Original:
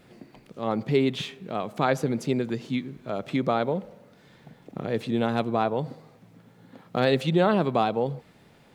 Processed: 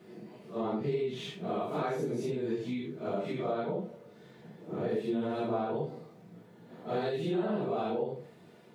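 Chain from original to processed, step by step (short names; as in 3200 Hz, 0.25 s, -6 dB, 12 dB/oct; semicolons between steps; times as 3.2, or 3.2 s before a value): phase scrambler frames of 0.2 s; HPF 110 Hz; bell 360 Hz +8 dB 1.9 oct; compressor 6:1, threshold -25 dBFS, peak gain reduction 14.5 dB; notch comb 270 Hz; gain -3 dB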